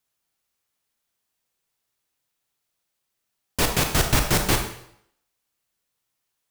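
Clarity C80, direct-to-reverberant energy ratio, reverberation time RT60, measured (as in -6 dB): 9.5 dB, 4.0 dB, 0.70 s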